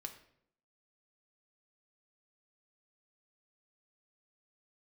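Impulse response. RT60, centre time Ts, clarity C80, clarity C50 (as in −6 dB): 0.70 s, 11 ms, 13.5 dB, 11.0 dB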